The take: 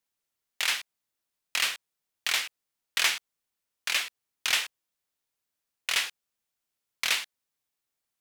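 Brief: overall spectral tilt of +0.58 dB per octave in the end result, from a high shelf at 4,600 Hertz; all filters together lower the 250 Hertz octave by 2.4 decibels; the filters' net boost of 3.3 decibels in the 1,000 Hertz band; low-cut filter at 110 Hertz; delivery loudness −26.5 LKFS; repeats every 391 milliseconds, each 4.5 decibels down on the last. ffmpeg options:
ffmpeg -i in.wav -af "highpass=110,equalizer=frequency=250:width_type=o:gain=-3.5,equalizer=frequency=1000:width_type=o:gain=5,highshelf=frequency=4600:gain=-8,aecho=1:1:391|782|1173|1564|1955|2346|2737|3128|3519:0.596|0.357|0.214|0.129|0.0772|0.0463|0.0278|0.0167|0.01,volume=4.5dB" out.wav

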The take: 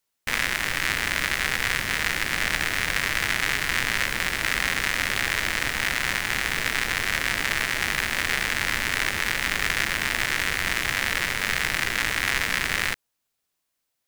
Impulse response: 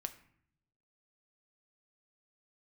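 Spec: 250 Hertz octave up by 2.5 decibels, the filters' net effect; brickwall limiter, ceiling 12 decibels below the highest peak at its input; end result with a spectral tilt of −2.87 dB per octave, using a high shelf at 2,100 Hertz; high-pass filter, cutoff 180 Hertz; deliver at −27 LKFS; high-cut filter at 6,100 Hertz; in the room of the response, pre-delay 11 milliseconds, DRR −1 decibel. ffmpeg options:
-filter_complex "[0:a]highpass=180,lowpass=6100,equalizer=frequency=250:width_type=o:gain=5,highshelf=frequency=2100:gain=-7,alimiter=limit=-22.5dB:level=0:latency=1,asplit=2[link_01][link_02];[1:a]atrim=start_sample=2205,adelay=11[link_03];[link_02][link_03]afir=irnorm=-1:irlink=0,volume=3dB[link_04];[link_01][link_04]amix=inputs=2:normalize=0,volume=5dB"

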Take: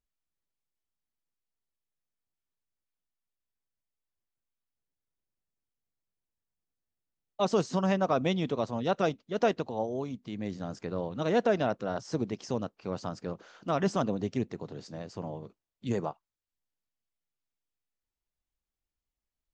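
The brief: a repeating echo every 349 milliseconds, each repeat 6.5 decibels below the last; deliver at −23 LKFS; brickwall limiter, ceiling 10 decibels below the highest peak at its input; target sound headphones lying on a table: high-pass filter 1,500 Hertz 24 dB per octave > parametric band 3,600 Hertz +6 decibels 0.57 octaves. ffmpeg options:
ffmpeg -i in.wav -af "alimiter=level_in=0.5dB:limit=-24dB:level=0:latency=1,volume=-0.5dB,highpass=frequency=1500:width=0.5412,highpass=frequency=1500:width=1.3066,equalizer=frequency=3600:width_type=o:width=0.57:gain=6,aecho=1:1:349|698|1047|1396|1745|2094:0.473|0.222|0.105|0.0491|0.0231|0.0109,volume=23.5dB" out.wav

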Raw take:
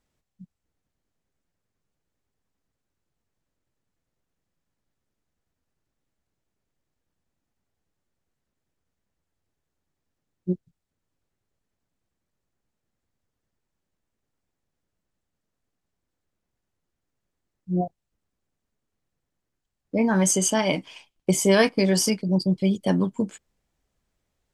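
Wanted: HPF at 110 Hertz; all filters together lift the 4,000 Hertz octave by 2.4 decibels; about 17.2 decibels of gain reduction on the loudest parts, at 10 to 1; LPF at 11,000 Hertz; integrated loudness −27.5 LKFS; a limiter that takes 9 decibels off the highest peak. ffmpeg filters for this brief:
ffmpeg -i in.wav -af "highpass=110,lowpass=11000,equalizer=frequency=4000:width_type=o:gain=3.5,acompressor=threshold=-31dB:ratio=10,volume=10dB,alimiter=limit=-16dB:level=0:latency=1" out.wav

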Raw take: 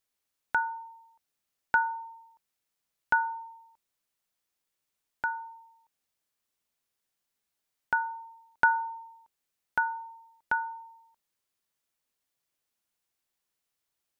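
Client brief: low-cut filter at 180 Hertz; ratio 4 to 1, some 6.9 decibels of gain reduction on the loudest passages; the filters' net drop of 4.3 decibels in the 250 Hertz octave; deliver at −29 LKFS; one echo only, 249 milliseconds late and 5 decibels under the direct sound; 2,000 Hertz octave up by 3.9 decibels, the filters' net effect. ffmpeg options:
ffmpeg -i in.wav -af "highpass=180,equalizer=frequency=250:width_type=o:gain=-4.5,equalizer=frequency=2000:width_type=o:gain=7,acompressor=threshold=-25dB:ratio=4,aecho=1:1:249:0.562,volume=4dB" out.wav

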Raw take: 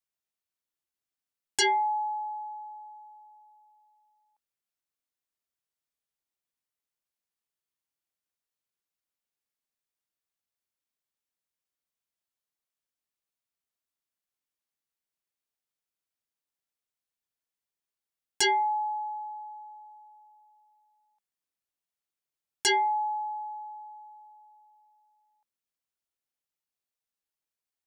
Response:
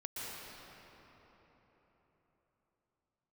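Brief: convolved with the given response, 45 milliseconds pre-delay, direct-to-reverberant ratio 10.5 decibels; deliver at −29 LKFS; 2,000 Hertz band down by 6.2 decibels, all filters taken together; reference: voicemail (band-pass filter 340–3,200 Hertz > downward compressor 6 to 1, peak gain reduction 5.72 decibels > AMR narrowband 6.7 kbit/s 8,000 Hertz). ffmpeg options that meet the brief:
-filter_complex "[0:a]equalizer=frequency=2000:width_type=o:gain=-6.5,asplit=2[link_01][link_02];[1:a]atrim=start_sample=2205,adelay=45[link_03];[link_02][link_03]afir=irnorm=-1:irlink=0,volume=-12dB[link_04];[link_01][link_04]amix=inputs=2:normalize=0,highpass=340,lowpass=3200,acompressor=threshold=-29dB:ratio=6,volume=7.5dB" -ar 8000 -c:a libopencore_amrnb -b:a 6700

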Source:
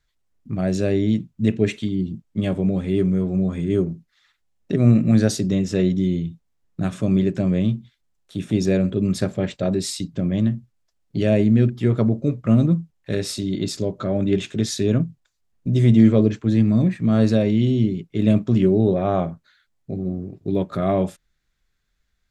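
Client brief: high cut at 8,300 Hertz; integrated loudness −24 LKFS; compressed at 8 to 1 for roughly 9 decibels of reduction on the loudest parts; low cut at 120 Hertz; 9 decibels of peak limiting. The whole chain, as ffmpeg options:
ffmpeg -i in.wav -af "highpass=120,lowpass=8300,acompressor=threshold=-18dB:ratio=8,volume=4.5dB,alimiter=limit=-14.5dB:level=0:latency=1" out.wav

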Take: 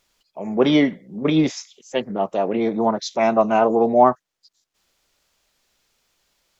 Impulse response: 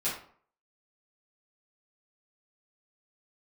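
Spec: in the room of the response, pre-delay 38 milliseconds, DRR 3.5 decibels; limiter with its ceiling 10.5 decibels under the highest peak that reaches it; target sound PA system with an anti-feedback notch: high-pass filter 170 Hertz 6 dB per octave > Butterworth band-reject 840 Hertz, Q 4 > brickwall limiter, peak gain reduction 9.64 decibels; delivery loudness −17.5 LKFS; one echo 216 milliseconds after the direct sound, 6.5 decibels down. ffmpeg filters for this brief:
-filter_complex "[0:a]alimiter=limit=-12.5dB:level=0:latency=1,aecho=1:1:216:0.473,asplit=2[link_01][link_02];[1:a]atrim=start_sample=2205,adelay=38[link_03];[link_02][link_03]afir=irnorm=-1:irlink=0,volume=-10dB[link_04];[link_01][link_04]amix=inputs=2:normalize=0,highpass=frequency=170:poles=1,asuperstop=centerf=840:order=8:qfactor=4,volume=9.5dB,alimiter=limit=-8.5dB:level=0:latency=1"

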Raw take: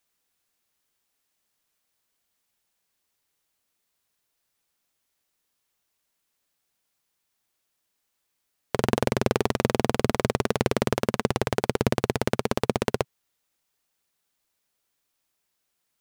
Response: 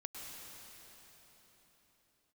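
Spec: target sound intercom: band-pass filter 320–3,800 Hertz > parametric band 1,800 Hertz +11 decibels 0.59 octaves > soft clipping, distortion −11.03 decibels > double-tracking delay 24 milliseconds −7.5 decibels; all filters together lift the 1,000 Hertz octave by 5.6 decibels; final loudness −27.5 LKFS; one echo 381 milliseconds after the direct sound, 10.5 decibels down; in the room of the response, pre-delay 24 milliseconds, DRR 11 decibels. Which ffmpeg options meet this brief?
-filter_complex "[0:a]equalizer=frequency=1000:width_type=o:gain=5.5,aecho=1:1:381:0.299,asplit=2[link_01][link_02];[1:a]atrim=start_sample=2205,adelay=24[link_03];[link_02][link_03]afir=irnorm=-1:irlink=0,volume=-9dB[link_04];[link_01][link_04]amix=inputs=2:normalize=0,highpass=320,lowpass=3800,equalizer=frequency=1800:width_type=o:width=0.59:gain=11,asoftclip=threshold=-10.5dB,asplit=2[link_05][link_06];[link_06]adelay=24,volume=-7.5dB[link_07];[link_05][link_07]amix=inputs=2:normalize=0,volume=-2dB"

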